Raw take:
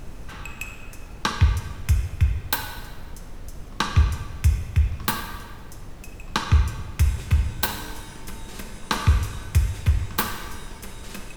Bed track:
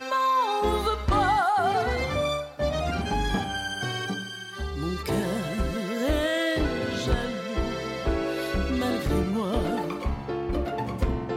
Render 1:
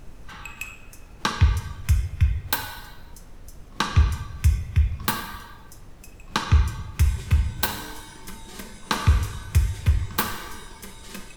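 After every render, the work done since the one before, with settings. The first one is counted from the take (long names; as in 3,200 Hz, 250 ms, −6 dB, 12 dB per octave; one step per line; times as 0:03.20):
noise reduction from a noise print 6 dB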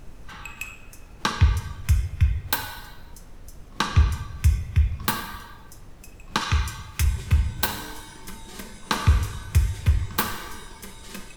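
0:06.41–0:07.04: tilt shelving filter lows −5.5 dB, about 850 Hz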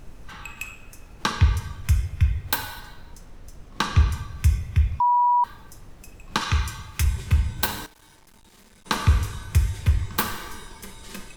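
0:02.80–0:03.84: running median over 3 samples
0:05.00–0:05.44: beep over 972 Hz −15.5 dBFS
0:07.86–0:08.86: tube saturation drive 51 dB, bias 0.6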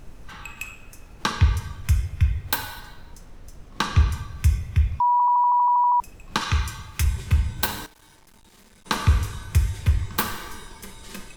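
0:05.12: stutter in place 0.08 s, 11 plays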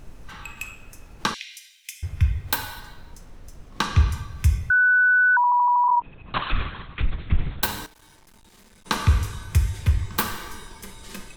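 0:01.34–0:02.03: Butterworth high-pass 2,100 Hz 48 dB per octave
0:04.70–0:05.37: beep over 1,490 Hz −14 dBFS
0:05.88–0:07.63: linear-prediction vocoder at 8 kHz whisper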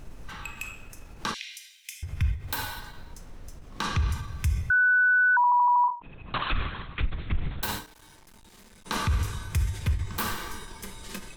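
brickwall limiter −17.5 dBFS, peak gain reduction 10.5 dB
every ending faded ahead of time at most 160 dB per second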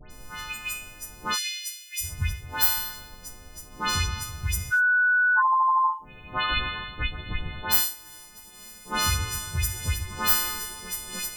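every partial snapped to a pitch grid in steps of 3 semitones
all-pass dispersion highs, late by 107 ms, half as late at 2,300 Hz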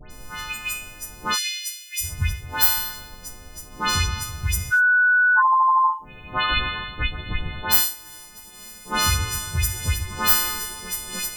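level +4 dB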